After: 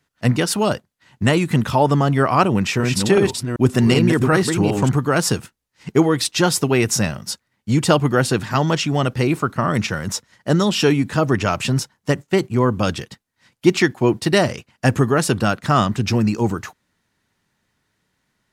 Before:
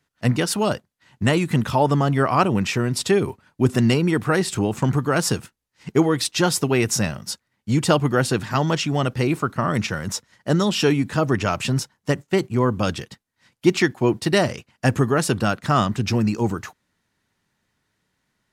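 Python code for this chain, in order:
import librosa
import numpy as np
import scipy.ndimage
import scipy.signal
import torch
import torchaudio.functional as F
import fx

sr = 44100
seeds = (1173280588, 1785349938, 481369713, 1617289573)

y = fx.reverse_delay(x, sr, ms=381, wet_db=-4.0, at=(2.42, 4.89))
y = y * librosa.db_to_amplitude(2.5)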